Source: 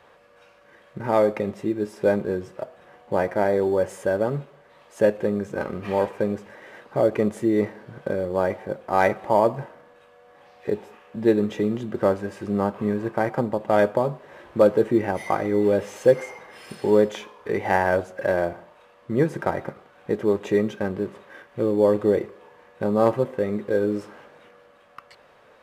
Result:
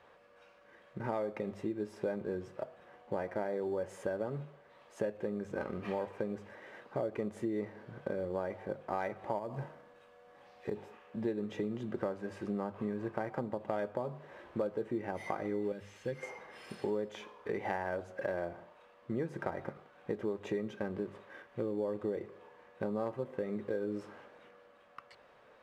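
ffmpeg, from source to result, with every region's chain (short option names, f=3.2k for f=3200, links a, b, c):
-filter_complex "[0:a]asettb=1/sr,asplit=3[a][b][c];[a]atrim=end=9.384[d];[b]atrim=start=9.38:end=10.76,asetpts=PTS-STARTPTS,afade=t=in:d=0.004:c=qsin,afade=t=out:st=1.376:d=0.004:c=qsin,bass=f=250:g=3,treble=f=4k:g=4,acompressor=threshold=-22dB:ratio=3:attack=3.2:release=140:knee=1:detection=peak[e];[c]atrim=start=10.756[f];[d][e]acrossfade=d=0.004:c1=hsin:c2=qsin[g];[g][f]acrossfade=d=0.004:c1=qsin:c2=hsin,asettb=1/sr,asplit=3[h][i][j];[h]atrim=end=15.724[k];[i]atrim=start=15.72:end=16.23,asetpts=PTS-STARTPTS,afade=t=in:d=0.004:c=qsin,afade=t=out:st=0.506:d=0.004:c=qsin,acrossover=split=4100[l][m];[m]acompressor=threshold=-54dB:ratio=4:attack=1:release=60[n];[l][n]amix=inputs=2:normalize=0,equalizer=f=600:t=o:w=2.6:g=-14[o];[j]atrim=start=16.226[p];[k][o]acrossfade=d=0.004:c1=hsin:c2=qsin[q];[q][p]acrossfade=d=0.004:c1=qsin:c2=hsin,highshelf=f=7.9k:g=-9,bandreject=f=50:t=h:w=6,bandreject=f=100:t=h:w=6,bandreject=f=150:t=h:w=6,acompressor=threshold=-25dB:ratio=6,volume=-7dB"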